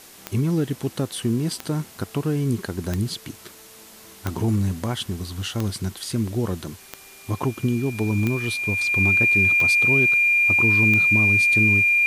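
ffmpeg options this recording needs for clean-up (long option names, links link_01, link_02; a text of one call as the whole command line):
ffmpeg -i in.wav -af "adeclick=threshold=4,bandreject=frequency=2400:width=30,afftdn=noise_reduction=21:noise_floor=-46" out.wav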